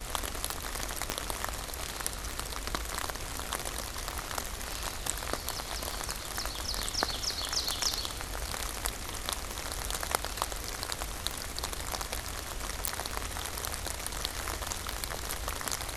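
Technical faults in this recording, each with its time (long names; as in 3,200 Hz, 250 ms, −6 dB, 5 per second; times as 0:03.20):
scratch tick 33 1/3 rpm
0:01.10: click −12 dBFS
0:12.88: click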